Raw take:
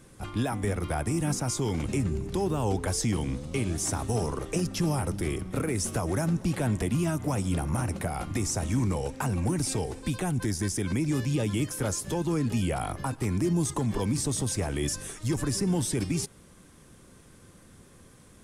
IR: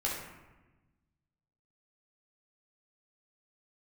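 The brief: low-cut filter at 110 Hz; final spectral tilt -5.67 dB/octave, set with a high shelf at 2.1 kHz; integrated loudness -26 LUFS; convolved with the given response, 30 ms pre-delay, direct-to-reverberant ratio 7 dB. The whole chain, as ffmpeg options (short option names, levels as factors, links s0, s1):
-filter_complex "[0:a]highpass=110,highshelf=f=2100:g=-5.5,asplit=2[s0][s1];[1:a]atrim=start_sample=2205,adelay=30[s2];[s1][s2]afir=irnorm=-1:irlink=0,volume=0.237[s3];[s0][s3]amix=inputs=2:normalize=0,volume=1.58"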